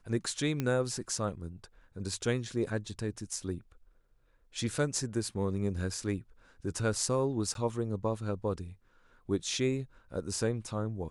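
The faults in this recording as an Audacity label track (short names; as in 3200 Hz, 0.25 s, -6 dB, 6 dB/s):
0.600000	0.600000	pop -18 dBFS
7.540000	7.550000	gap 12 ms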